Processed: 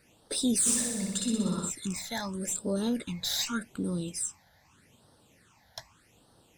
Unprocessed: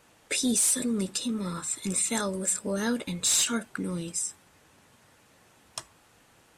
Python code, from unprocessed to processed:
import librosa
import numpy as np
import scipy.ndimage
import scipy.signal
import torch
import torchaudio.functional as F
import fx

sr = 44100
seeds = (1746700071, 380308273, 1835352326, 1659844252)

y = fx.diode_clip(x, sr, knee_db=-16.5)
y = fx.phaser_stages(y, sr, stages=8, low_hz=340.0, high_hz=2300.0, hz=0.83, feedback_pct=25)
y = fx.room_flutter(y, sr, wall_m=10.5, rt60_s=1.2, at=(0.65, 1.69), fade=0.02)